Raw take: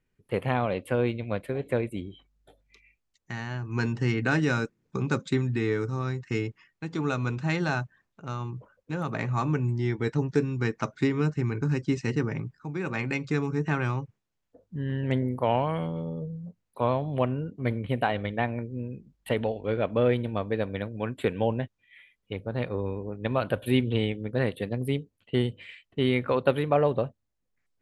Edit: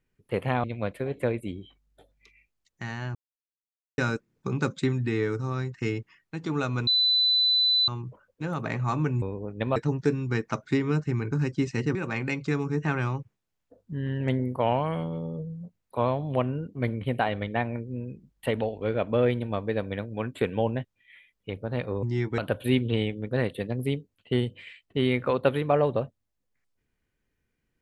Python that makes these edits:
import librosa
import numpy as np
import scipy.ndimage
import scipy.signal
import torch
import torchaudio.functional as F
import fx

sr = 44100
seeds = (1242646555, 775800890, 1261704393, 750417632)

y = fx.edit(x, sr, fx.cut(start_s=0.64, length_s=0.49),
    fx.silence(start_s=3.64, length_s=0.83),
    fx.bleep(start_s=7.36, length_s=1.01, hz=4000.0, db=-19.0),
    fx.swap(start_s=9.71, length_s=0.35, other_s=22.86, other_length_s=0.54),
    fx.cut(start_s=12.25, length_s=0.53), tone=tone)